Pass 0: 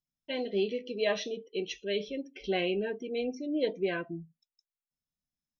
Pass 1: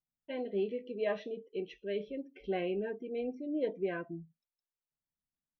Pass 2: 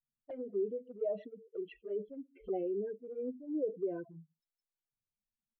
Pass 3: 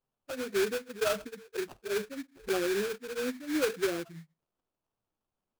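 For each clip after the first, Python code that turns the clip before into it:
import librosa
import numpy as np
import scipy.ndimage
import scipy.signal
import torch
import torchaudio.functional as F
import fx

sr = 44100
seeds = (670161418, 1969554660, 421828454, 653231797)

y1 = scipy.signal.sosfilt(scipy.signal.butter(2, 1800.0, 'lowpass', fs=sr, output='sos'), x)
y1 = F.gain(torch.from_numpy(y1), -3.5).numpy()
y2 = fx.spec_expand(y1, sr, power=2.3)
y2 = fx.env_flanger(y2, sr, rest_ms=9.0, full_db=-32.0)
y3 = fx.sample_hold(y2, sr, seeds[0], rate_hz=2000.0, jitter_pct=20)
y3 = F.gain(torch.from_numpy(y3), 5.5).numpy()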